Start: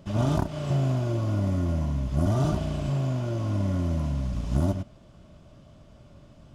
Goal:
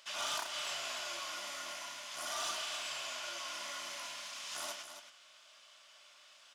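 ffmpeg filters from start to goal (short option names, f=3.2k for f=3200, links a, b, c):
-filter_complex "[0:a]highpass=1.5k,highshelf=f=2.3k:g=8.5,asplit=2[a][b];[b]highpass=f=720:p=1,volume=11dB,asoftclip=type=tanh:threshold=-23dB[c];[a][c]amix=inputs=2:normalize=0,lowpass=f=5.4k:p=1,volume=-6dB,asplit=2[d][e];[e]aecho=0:1:34.99|274.1:0.316|0.355[f];[d][f]amix=inputs=2:normalize=0,volume=-3.5dB"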